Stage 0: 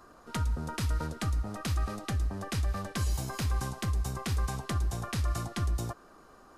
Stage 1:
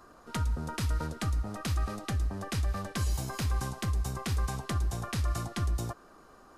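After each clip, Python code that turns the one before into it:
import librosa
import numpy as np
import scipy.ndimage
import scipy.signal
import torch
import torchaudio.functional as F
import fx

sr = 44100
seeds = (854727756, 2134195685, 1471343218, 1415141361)

y = x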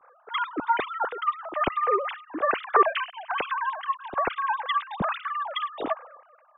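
y = fx.sine_speech(x, sr)
y = fx.band_widen(y, sr, depth_pct=100)
y = y * 10.0 ** (3.0 / 20.0)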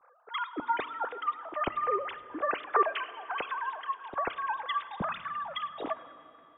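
y = fx.rev_fdn(x, sr, rt60_s=3.8, lf_ratio=1.0, hf_ratio=0.75, size_ms=59.0, drr_db=14.5)
y = y * 10.0 ** (-6.0 / 20.0)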